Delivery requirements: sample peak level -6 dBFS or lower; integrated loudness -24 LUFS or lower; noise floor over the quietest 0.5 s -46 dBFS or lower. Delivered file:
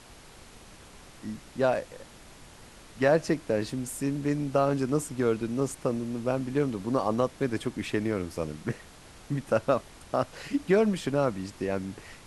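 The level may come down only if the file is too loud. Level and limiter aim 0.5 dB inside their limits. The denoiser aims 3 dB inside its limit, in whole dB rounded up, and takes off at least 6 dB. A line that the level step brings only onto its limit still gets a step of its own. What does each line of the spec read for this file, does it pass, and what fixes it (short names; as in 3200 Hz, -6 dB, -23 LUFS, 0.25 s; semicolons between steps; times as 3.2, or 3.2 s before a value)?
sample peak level -11.0 dBFS: OK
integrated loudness -29.0 LUFS: OK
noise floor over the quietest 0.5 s -50 dBFS: OK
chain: none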